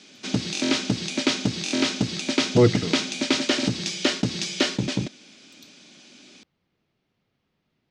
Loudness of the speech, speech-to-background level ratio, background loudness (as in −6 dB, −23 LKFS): −22.5 LKFS, 2.0 dB, −24.5 LKFS